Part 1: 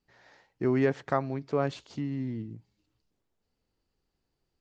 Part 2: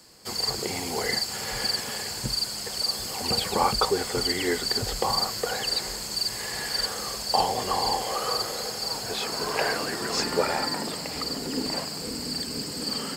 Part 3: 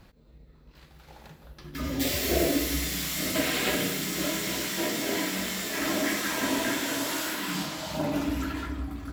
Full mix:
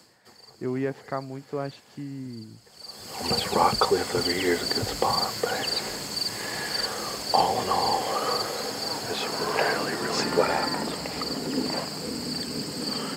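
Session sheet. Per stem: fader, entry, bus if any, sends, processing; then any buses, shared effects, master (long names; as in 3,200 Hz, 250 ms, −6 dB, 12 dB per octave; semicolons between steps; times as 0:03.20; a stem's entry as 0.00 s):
−3.0 dB, 0.00 s, no send, no processing
+2.5 dB, 0.00 s, no send, automatic ducking −23 dB, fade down 0.35 s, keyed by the first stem
−13.5 dB, 2.20 s, no send, no processing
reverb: not used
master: high-pass filter 86 Hz; high-shelf EQ 3,700 Hz −6 dB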